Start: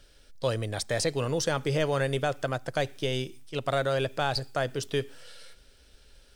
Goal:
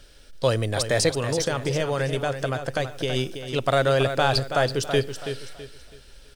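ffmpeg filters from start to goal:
-filter_complex "[0:a]asplit=3[s0][s1][s2];[s0]afade=t=out:st=1.09:d=0.02[s3];[s1]acompressor=threshold=0.0251:ratio=2,afade=t=in:st=1.09:d=0.02,afade=t=out:st=3.15:d=0.02[s4];[s2]afade=t=in:st=3.15:d=0.02[s5];[s3][s4][s5]amix=inputs=3:normalize=0,aecho=1:1:328|656|984|1312:0.355|0.114|0.0363|0.0116,volume=2.11"

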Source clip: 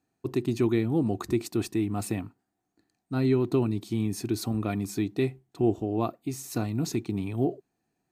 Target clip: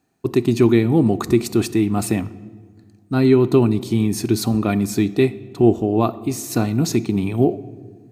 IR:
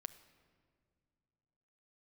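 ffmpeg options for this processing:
-filter_complex "[0:a]asplit=2[s0][s1];[1:a]atrim=start_sample=2205,asetrate=57330,aresample=44100[s2];[s1][s2]afir=irnorm=-1:irlink=0,volume=4.73[s3];[s0][s3]amix=inputs=2:normalize=0"

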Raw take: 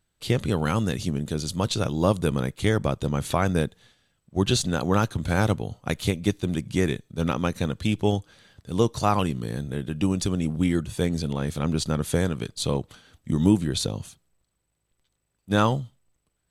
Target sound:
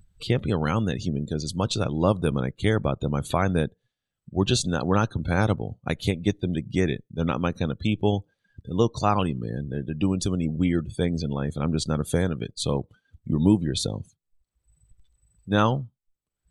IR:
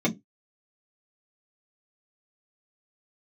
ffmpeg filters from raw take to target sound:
-af "acompressor=mode=upward:threshold=0.0251:ratio=2.5,afftdn=nr=27:nf=-39"

